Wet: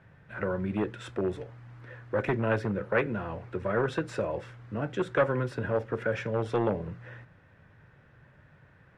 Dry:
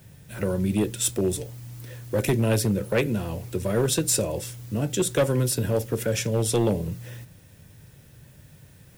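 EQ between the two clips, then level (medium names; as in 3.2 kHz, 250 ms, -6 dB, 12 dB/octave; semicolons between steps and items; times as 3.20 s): resonant low-pass 1.5 kHz, resonance Q 1.8; bass shelf 460 Hz -9 dB; 0.0 dB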